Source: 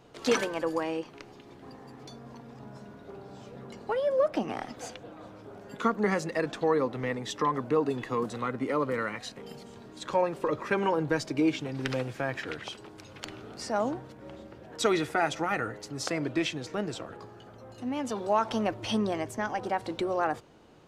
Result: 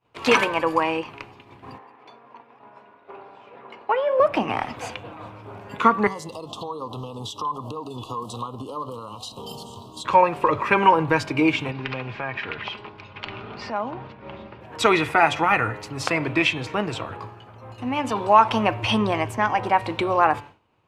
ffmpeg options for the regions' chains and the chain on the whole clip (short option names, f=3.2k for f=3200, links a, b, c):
-filter_complex "[0:a]asettb=1/sr,asplit=3[a][b][c];[a]atrim=end=1.784[d];[b]atrim=start=1.78:end=4.2,asetpts=PTS-STARTPTS,afade=t=in:d=0.004:c=qsin,afade=t=out:st=2.416:d=0.004:c=qsin,acrossover=split=300 3500:gain=0.0794 1 0.178[e][f][g];[e][f][g]amix=inputs=3:normalize=0,bandreject=f=7.6k:w=28[h];[c]atrim=start=4.196[i];[d][h]acrossfade=d=0.004:c1=hsin:c2=qsin[j];[j][i]acrossfade=d=0.004:c1=qsin:c2=hsin,asettb=1/sr,asplit=3[k][l][m];[k]atrim=end=6.074[n];[l]atrim=start=6.07:end=10.05,asetpts=PTS-STARTPTS,afade=t=in:d=0.004:c=qsin,afade=t=out:st=3.976:d=0.004:c=qsin,highshelf=f=3k:g=11.5,acompressor=threshold=-36dB:ratio=12:attack=3.2:release=140:knee=1:detection=peak,asuperstop=centerf=1900:order=12:qfactor=1.1[o];[m]atrim=start=10.046[p];[n][o]acrossfade=d=0.004:c1=hsin:c2=qsin[q];[q][p]acrossfade=d=0.004:c1=qsin:c2=hsin,asettb=1/sr,asplit=3[r][s][t];[r]atrim=end=11.714[u];[s]atrim=start=11.71:end=14.61,asetpts=PTS-STARTPTS,afade=t=in:d=0.004:c=qsin,afade=t=out:st=2.896:d=0.004:c=qsin,lowpass=f=4.8k:w=0.5412,lowpass=f=4.8k:w=1.3066,aecho=1:1:4.9:0.35,atrim=end_sample=127890,acompressor=threshold=-39dB:ratio=2:attack=3.2:release=140:knee=1:detection=peak[v];[t]atrim=start=14.606[w];[u][v]acrossfade=d=0.004:c1=hsin:c2=qsin[x];[x][w]acrossfade=d=0.004:c1=qsin:c2=hsin,bandreject=f=144.1:t=h:w=4,bandreject=f=288.2:t=h:w=4,bandreject=f=432.3:t=h:w=4,bandreject=f=576.4:t=h:w=4,bandreject=f=720.5:t=h:w=4,bandreject=f=864.6:t=h:w=4,bandreject=f=1.0087k:t=h:w=4,bandreject=f=1.1528k:t=h:w=4,bandreject=f=1.2969k:t=h:w=4,bandreject=f=1.441k:t=h:w=4,bandreject=f=1.5851k:t=h:w=4,bandreject=f=1.7292k:t=h:w=4,bandreject=f=1.8733k:t=h:w=4,bandreject=f=2.0174k:t=h:w=4,bandreject=f=2.1615k:t=h:w=4,bandreject=f=2.3056k:t=h:w=4,bandreject=f=2.4497k:t=h:w=4,bandreject=f=2.5938k:t=h:w=4,bandreject=f=2.7379k:t=h:w=4,bandreject=f=2.882k:t=h:w=4,bandreject=f=3.0261k:t=h:w=4,bandreject=f=3.1702k:t=h:w=4,bandreject=f=3.3143k:t=h:w=4,bandreject=f=3.4584k:t=h:w=4,bandreject=f=3.6025k:t=h:w=4,bandreject=f=3.7466k:t=h:w=4,bandreject=f=3.8907k:t=h:w=4,bandreject=f=4.0348k:t=h:w=4,bandreject=f=4.1789k:t=h:w=4,agate=range=-33dB:threshold=-44dB:ratio=3:detection=peak,equalizer=f=100:t=o:w=0.67:g=11,equalizer=f=1k:t=o:w=0.67:g=11,equalizer=f=2.5k:t=o:w=0.67:g=11,equalizer=f=6.3k:t=o:w=0.67:g=-4,volume=4.5dB"